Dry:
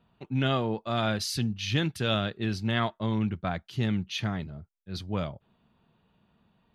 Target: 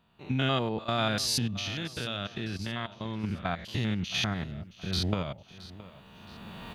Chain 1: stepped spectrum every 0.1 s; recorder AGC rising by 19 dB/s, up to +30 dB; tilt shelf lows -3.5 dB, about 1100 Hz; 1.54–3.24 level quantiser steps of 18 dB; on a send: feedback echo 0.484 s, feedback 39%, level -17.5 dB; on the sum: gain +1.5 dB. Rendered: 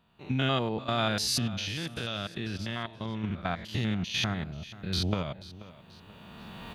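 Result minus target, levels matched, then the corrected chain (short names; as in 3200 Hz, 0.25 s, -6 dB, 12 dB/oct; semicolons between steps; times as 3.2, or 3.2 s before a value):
echo 0.186 s early
stepped spectrum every 0.1 s; recorder AGC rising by 19 dB/s, up to +30 dB; tilt shelf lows -3.5 dB, about 1100 Hz; 1.54–3.24 level quantiser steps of 18 dB; on a send: feedback echo 0.67 s, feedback 39%, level -17.5 dB; on the sum: gain +1.5 dB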